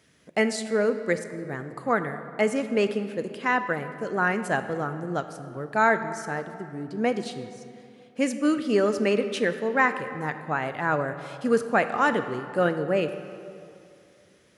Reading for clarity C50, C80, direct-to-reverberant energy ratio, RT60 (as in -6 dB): 10.5 dB, 11.0 dB, 9.5 dB, 2.6 s